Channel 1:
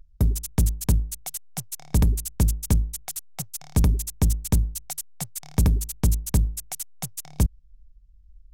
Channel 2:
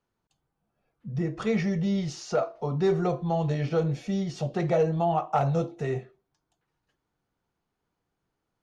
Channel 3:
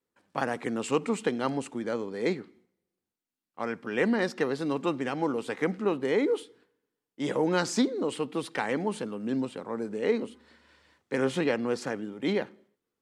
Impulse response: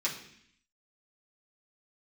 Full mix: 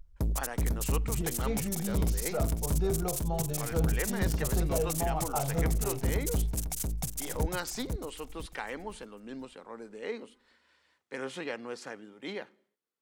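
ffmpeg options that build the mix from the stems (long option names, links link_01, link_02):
-filter_complex "[0:a]asoftclip=type=tanh:threshold=-24dB,volume=-1.5dB,asplit=2[link_01][link_02];[link_02]volume=-4.5dB[link_03];[1:a]bandreject=frequency=1900:width=6.5,volume=-8dB,asplit=2[link_04][link_05];[link_05]volume=-16.5dB[link_06];[2:a]lowshelf=frequency=440:gain=-10.5,volume=-5.5dB[link_07];[link_03][link_06]amix=inputs=2:normalize=0,aecho=0:1:499|998|1497|1996:1|0.3|0.09|0.027[link_08];[link_01][link_04][link_07][link_08]amix=inputs=4:normalize=0"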